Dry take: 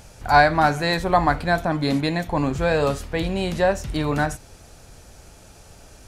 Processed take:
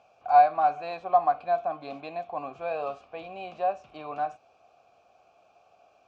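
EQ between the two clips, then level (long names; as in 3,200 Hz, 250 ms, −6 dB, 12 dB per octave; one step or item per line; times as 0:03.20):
formant filter a
high-pass filter 54 Hz
low-pass filter 7,000 Hz 24 dB per octave
0.0 dB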